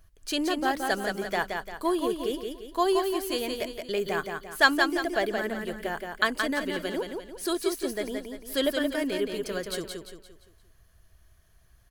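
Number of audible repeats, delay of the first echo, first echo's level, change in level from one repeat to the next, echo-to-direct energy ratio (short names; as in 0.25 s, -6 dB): 4, 0.173 s, -5.0 dB, -7.5 dB, -4.0 dB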